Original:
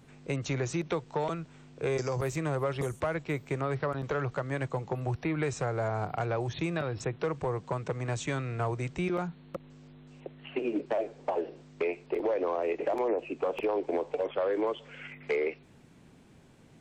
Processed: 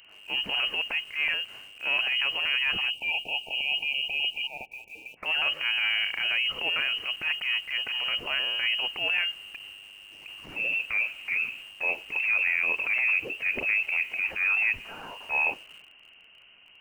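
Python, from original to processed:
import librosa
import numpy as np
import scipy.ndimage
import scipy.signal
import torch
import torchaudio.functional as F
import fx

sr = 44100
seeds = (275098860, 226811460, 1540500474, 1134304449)

p1 = fx.transient(x, sr, attack_db=-10, sustain_db=4)
p2 = fx.highpass(p1, sr, hz=700.0, slope=12, at=(4.47, 5.26))
p3 = fx.freq_invert(p2, sr, carrier_hz=3000)
p4 = fx.quant_dither(p3, sr, seeds[0], bits=8, dither='none')
p5 = p3 + (p4 * 10.0 ** (-11.5 / 20.0))
p6 = fx.spec_erase(p5, sr, start_s=2.9, length_s=2.27, low_hz=930.0, high_hz=2300.0)
y = p6 * 10.0 ** (2.5 / 20.0)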